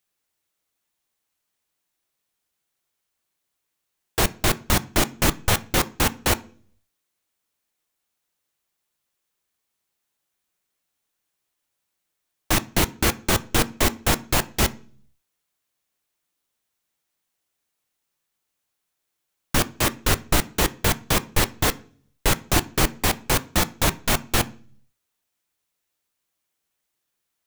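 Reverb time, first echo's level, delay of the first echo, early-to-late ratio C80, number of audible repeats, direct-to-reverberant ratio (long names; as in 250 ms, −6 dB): 0.45 s, no echo audible, no echo audible, 26.5 dB, no echo audible, 11.5 dB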